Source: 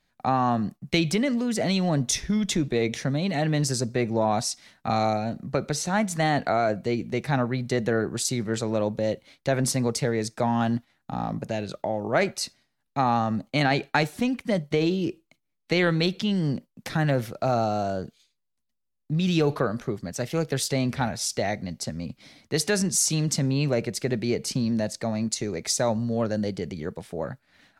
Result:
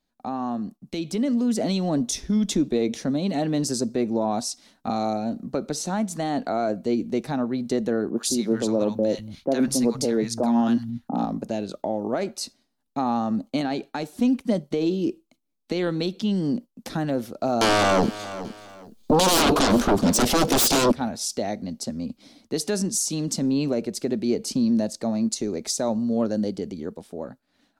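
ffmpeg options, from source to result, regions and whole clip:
ffmpeg -i in.wav -filter_complex "[0:a]asettb=1/sr,asplit=3[link_01][link_02][link_03];[link_01]atrim=end=8.104[link_04];[link_02]atrim=start=8.1:end=11.25,asetpts=PTS-STARTPTS,afade=type=in:duration=0.004:curve=qsin,afade=type=out:start_time=3.146:duration=0.004:curve=qsin,bandreject=frequency=7900:width=9.9,acrossover=split=150|1000[link_05][link_06][link_07];[link_07]adelay=60[link_08];[link_05]adelay=200[link_09];[link_09][link_06][link_08]amix=inputs=3:normalize=0,atrim=end_sample=138915,acontrast=48[link_10];[link_03]atrim=start=11.246[link_11];[link_04][link_10]acrossfade=duration=0.004:curve1=hsin:curve2=qsin[link_12];[link_12][link_11]acrossfade=duration=0.004:curve1=qsin:curve2=hsin,asettb=1/sr,asplit=3[link_13][link_14][link_15];[link_13]atrim=end=17.614[link_16];[link_14]atrim=start=17.61:end=20.92,asetpts=PTS-STARTPTS,afade=type=in:duration=0.004:curve=qsin,afade=type=out:start_time=3.306:duration=0.004:curve=qsin,aeval=exprs='0.282*sin(PI/2*8.91*val(0)/0.282)':channel_layout=same,aecho=1:1:419|838:0.141|0.0367,atrim=end_sample=145971[link_17];[link_15]atrim=start=20.916[link_18];[link_16][link_17]acrossfade=duration=0.004:curve1=hsin:curve2=qsin[link_19];[link_19][link_18]acrossfade=duration=0.004:curve1=qsin:curve2=hsin,alimiter=limit=-14.5dB:level=0:latency=1:release=334,dynaudnorm=framelen=220:gausssize=11:maxgain=5.5dB,equalizer=frequency=125:width_type=o:width=1:gain=-11,equalizer=frequency=250:width_type=o:width=1:gain=8,equalizer=frequency=2000:width_type=o:width=1:gain=-9,volume=-5dB" out.wav

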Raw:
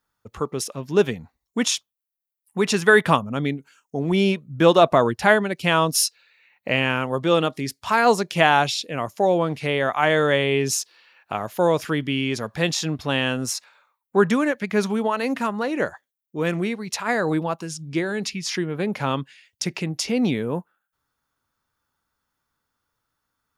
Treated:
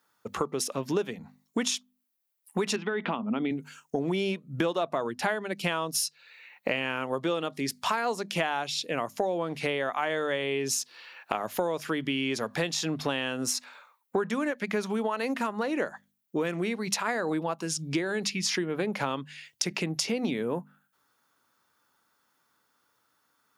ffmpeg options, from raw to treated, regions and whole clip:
ffmpeg -i in.wav -filter_complex "[0:a]asettb=1/sr,asplit=3[link_01][link_02][link_03];[link_01]atrim=end=2.764[link_04];[link_02]atrim=start=2.76:end=3.51,asetpts=PTS-STARTPTS,afade=type=in:duration=0.004:curve=qsin,afade=type=out:start_time=0.746:duration=0.004:curve=qsin,acompressor=threshold=-21dB:ratio=4:attack=3.2:release=140:knee=1:detection=peak,highpass=210,equalizer=frequency=230:width_type=q:width=4:gain=8,equalizer=frequency=540:width_type=q:width=4:gain=-7,equalizer=frequency=1100:width_type=q:width=4:gain=-4,equalizer=frequency=1700:width_type=q:width=4:gain=-8,lowpass=frequency=3200:width=0.5412,lowpass=frequency=3200:width=1.3066[link_05];[link_03]atrim=start=3.506[link_06];[link_04][link_05]acrossfade=duration=0.004:curve1=hsin:curve2=qsin[link_07];[link_07][link_06]acrossfade=duration=0.004:curve1=qsin:curve2=hsin,highpass=190,bandreject=frequency=50:width_type=h:width=6,bandreject=frequency=100:width_type=h:width=6,bandreject=frequency=150:width_type=h:width=6,bandreject=frequency=200:width_type=h:width=6,bandreject=frequency=250:width_type=h:width=6,acompressor=threshold=-33dB:ratio=8,volume=7dB" out.wav

